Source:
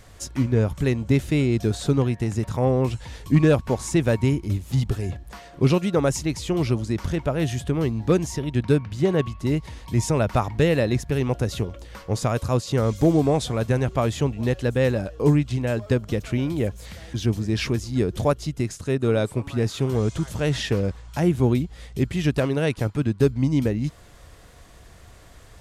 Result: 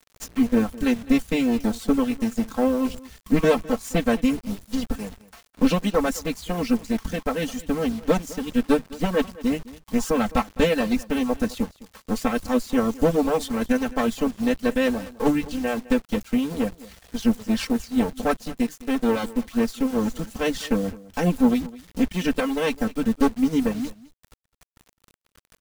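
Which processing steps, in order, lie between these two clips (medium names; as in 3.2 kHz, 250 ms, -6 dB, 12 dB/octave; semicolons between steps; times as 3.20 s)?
comb filter that takes the minimum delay 3.8 ms; hum notches 50/100/150 Hz; reverb removal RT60 0.83 s; comb 4.5 ms, depth 56%; bit crusher 7-bit; crossover distortion -41.5 dBFS; delay 209 ms -19.5 dB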